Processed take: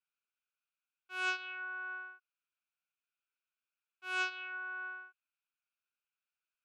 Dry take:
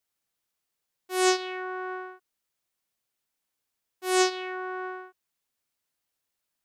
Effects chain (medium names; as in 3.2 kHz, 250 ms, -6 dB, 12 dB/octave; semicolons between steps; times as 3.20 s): two resonant band-passes 1.9 kHz, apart 0.77 oct